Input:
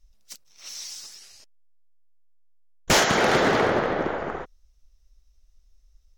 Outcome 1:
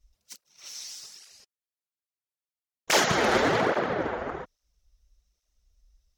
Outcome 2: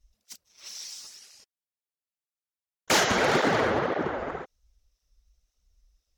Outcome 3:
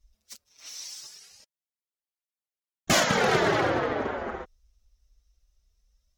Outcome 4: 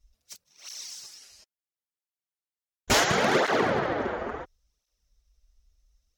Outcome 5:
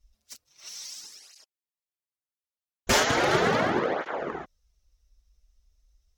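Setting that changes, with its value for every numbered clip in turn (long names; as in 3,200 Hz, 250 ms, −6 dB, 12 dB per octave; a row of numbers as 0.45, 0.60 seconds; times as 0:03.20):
through-zero flanger with one copy inverted, nulls at: 1.2, 1.9, 0.22, 0.72, 0.37 Hertz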